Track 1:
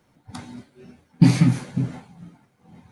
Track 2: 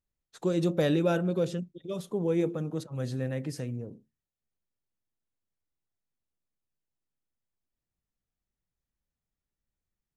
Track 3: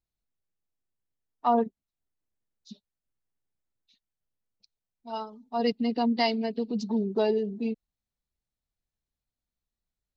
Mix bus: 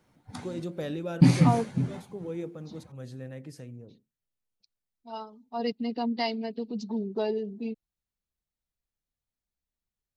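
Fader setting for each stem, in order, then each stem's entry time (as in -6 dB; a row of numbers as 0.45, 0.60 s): -4.0, -8.5, -4.0 dB; 0.00, 0.00, 0.00 s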